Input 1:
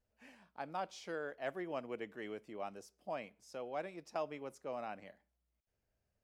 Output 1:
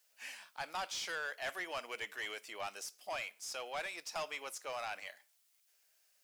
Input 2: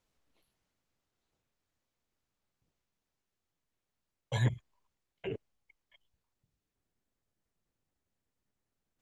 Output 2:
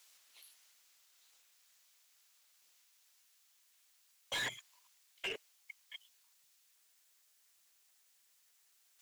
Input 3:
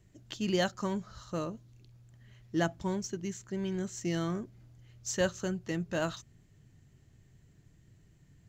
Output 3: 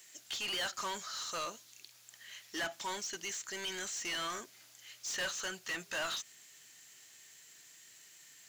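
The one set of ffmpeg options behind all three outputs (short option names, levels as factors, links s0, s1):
-filter_complex "[0:a]aderivative,acrossover=split=3800[s0][s1];[s1]acompressor=threshold=0.00112:ratio=4:attack=1:release=60[s2];[s0][s2]amix=inputs=2:normalize=0,asplit=2[s3][s4];[s4]highpass=f=720:p=1,volume=31.6,asoftclip=type=tanh:threshold=0.0316[s5];[s3][s5]amix=inputs=2:normalize=0,lowpass=f=5100:p=1,volume=0.501,volume=1.26"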